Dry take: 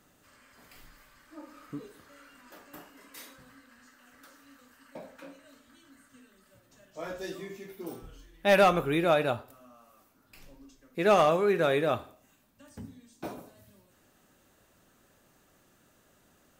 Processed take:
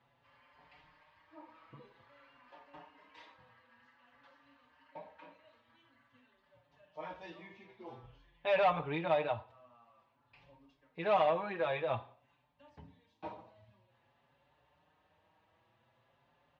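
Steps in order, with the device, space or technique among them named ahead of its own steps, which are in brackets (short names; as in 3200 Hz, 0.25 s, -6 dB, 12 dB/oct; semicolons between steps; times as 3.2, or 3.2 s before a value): barber-pole flanger into a guitar amplifier (endless flanger 5.5 ms +0.5 Hz; soft clip -20 dBFS, distortion -14 dB; speaker cabinet 79–3500 Hz, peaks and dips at 120 Hz +3 dB, 190 Hz -8 dB, 260 Hz -9 dB, 380 Hz -9 dB, 920 Hz +9 dB, 1400 Hz -7 dB); gain -2 dB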